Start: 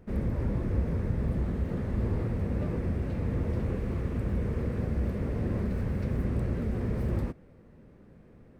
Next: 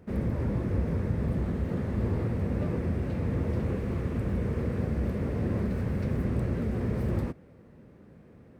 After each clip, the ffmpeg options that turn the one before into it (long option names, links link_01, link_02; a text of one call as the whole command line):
ffmpeg -i in.wav -af "highpass=66,volume=2dB" out.wav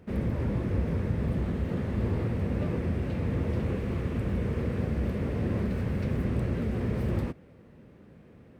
ffmpeg -i in.wav -af "equalizer=frequency=3000:width_type=o:width=0.95:gain=5" out.wav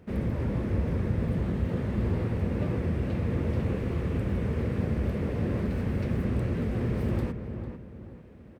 ffmpeg -i in.wav -filter_complex "[0:a]asplit=2[link_01][link_02];[link_02]adelay=448,lowpass=frequency=1900:poles=1,volume=-8dB,asplit=2[link_03][link_04];[link_04]adelay=448,lowpass=frequency=1900:poles=1,volume=0.37,asplit=2[link_05][link_06];[link_06]adelay=448,lowpass=frequency=1900:poles=1,volume=0.37,asplit=2[link_07][link_08];[link_08]adelay=448,lowpass=frequency=1900:poles=1,volume=0.37[link_09];[link_01][link_03][link_05][link_07][link_09]amix=inputs=5:normalize=0" out.wav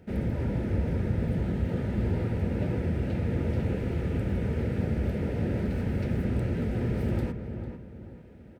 ffmpeg -i in.wav -af "asuperstop=centerf=1100:order=20:qfactor=5.7" out.wav